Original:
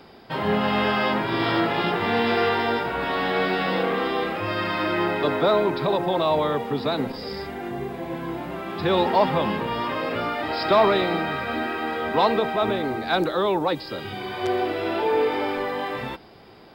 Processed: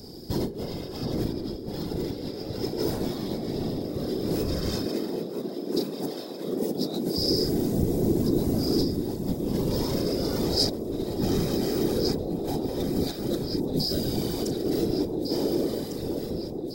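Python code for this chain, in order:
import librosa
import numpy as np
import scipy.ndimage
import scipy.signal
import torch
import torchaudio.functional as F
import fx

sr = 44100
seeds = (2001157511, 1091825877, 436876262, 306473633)

y = fx.fade_out_tail(x, sr, length_s=2.17)
y = fx.low_shelf(y, sr, hz=390.0, db=5.5)
y = fx.doubler(y, sr, ms=36.0, db=-3.0)
y = fx.over_compress(y, sr, threshold_db=-24.0, ratio=-0.5)
y = fx.echo_alternate(y, sr, ms=726, hz=860.0, feedback_pct=75, wet_db=-6)
y = fx.whisperise(y, sr, seeds[0])
y = fx.highpass(y, sr, hz=180.0, slope=24, at=(4.86, 7.17))
y = 10.0 ** (-13.5 / 20.0) * np.tanh(y / 10.0 ** (-13.5 / 20.0))
y = fx.curve_eq(y, sr, hz=(350.0, 1100.0, 2800.0, 5400.0), db=(0, -21, -19, 11))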